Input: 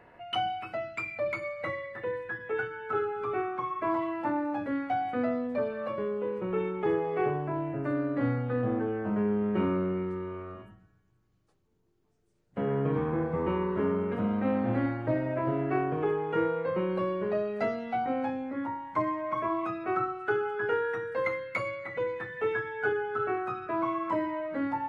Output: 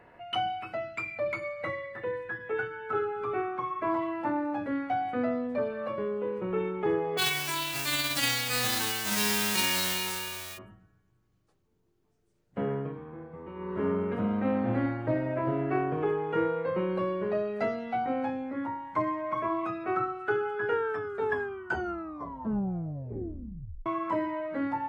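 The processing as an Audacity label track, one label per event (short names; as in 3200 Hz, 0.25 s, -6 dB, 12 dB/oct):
7.170000	10.570000	spectral whitening exponent 0.1
12.620000	13.890000	dip -14 dB, fades 0.35 s
20.720000	20.720000	tape stop 3.14 s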